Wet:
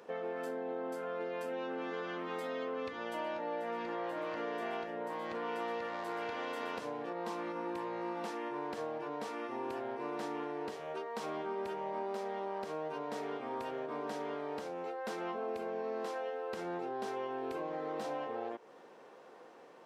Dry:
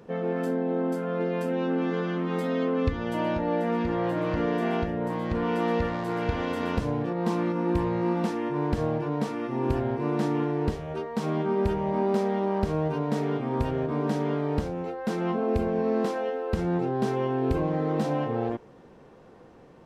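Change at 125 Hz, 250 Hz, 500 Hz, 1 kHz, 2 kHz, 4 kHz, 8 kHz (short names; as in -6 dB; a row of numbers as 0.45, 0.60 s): -26.5 dB, -16.5 dB, -10.5 dB, -7.5 dB, -6.5 dB, -6.5 dB, n/a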